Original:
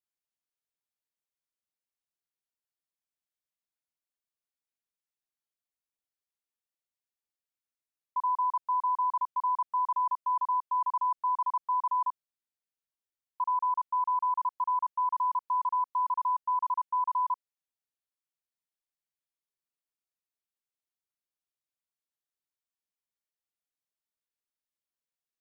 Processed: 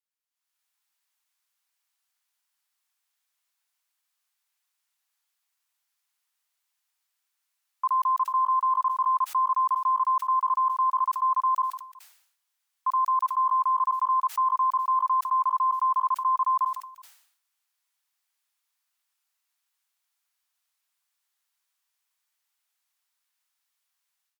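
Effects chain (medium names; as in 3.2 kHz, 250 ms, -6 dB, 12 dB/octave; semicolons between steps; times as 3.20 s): high-pass 790 Hz 24 dB/octave; peak limiter -34 dBFS, peak gain reduction 9.5 dB; level rider gain up to 15.5 dB; on a send: delay 386 ms -23.5 dB; on the sum: speed mistake 24 fps film run at 25 fps; decay stretcher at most 84 dB/s; trim -1 dB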